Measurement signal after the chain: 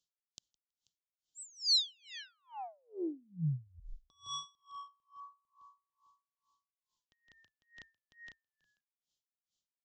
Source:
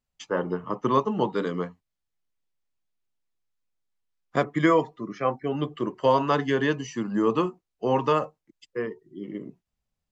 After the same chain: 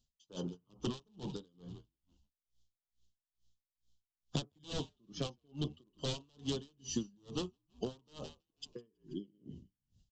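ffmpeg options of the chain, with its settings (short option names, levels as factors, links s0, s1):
-filter_complex "[0:a]aresample=16000,aeval=exprs='0.106*(abs(mod(val(0)/0.106+3,4)-2)-1)':c=same,aresample=44100,acompressor=threshold=0.0141:ratio=6,firequalizer=gain_entry='entry(120,0);entry(480,-9);entry(2100,-25);entry(3100,3)':delay=0.05:min_phase=1,asplit=5[s0][s1][s2][s3][s4];[s1]adelay=162,afreqshift=-60,volume=0.178[s5];[s2]adelay=324,afreqshift=-120,volume=0.0832[s6];[s3]adelay=486,afreqshift=-180,volume=0.0394[s7];[s4]adelay=648,afreqshift=-240,volume=0.0184[s8];[s0][s5][s6][s7][s8]amix=inputs=5:normalize=0,aeval=exprs='val(0)*pow(10,-36*(0.5-0.5*cos(2*PI*2.3*n/s))/20)':c=same,volume=2.82"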